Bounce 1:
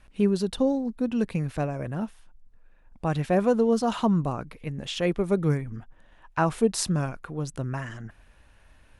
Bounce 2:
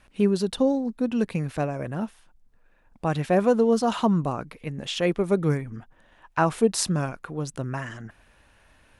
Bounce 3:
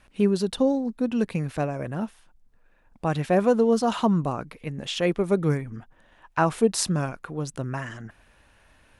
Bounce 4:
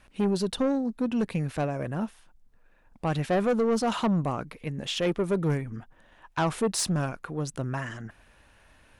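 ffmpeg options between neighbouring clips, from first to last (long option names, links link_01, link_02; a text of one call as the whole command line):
ffmpeg -i in.wav -af "lowshelf=frequency=93:gain=-9.5,volume=2.5dB" out.wav
ffmpeg -i in.wav -af anull out.wav
ffmpeg -i in.wav -af "asoftclip=type=tanh:threshold=-19.5dB" out.wav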